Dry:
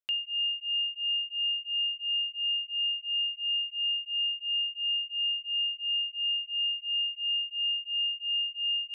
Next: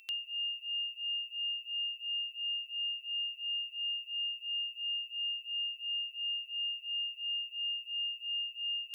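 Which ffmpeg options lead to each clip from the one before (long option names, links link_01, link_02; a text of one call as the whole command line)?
ffmpeg -i in.wav -af "aeval=exprs='val(0)+0.00501*sin(2*PI*2700*n/s)':channel_layout=same,crystalizer=i=8.5:c=0,equalizer=frequency=2600:width_type=o:width=0.38:gain=-13.5,volume=-8.5dB" out.wav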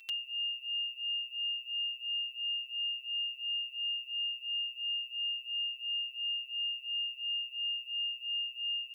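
ffmpeg -i in.wav -af "aecho=1:1:6.3:0.65" out.wav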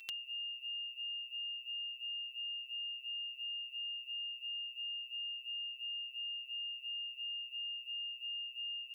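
ffmpeg -i in.wav -af "acompressor=threshold=-43dB:ratio=6,volume=2dB" out.wav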